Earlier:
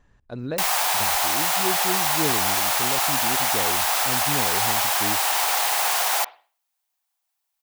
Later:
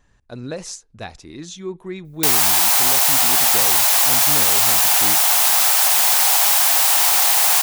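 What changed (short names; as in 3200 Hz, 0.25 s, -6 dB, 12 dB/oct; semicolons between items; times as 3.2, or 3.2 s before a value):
background: entry +1.65 s; master: add high shelf 3600 Hz +10 dB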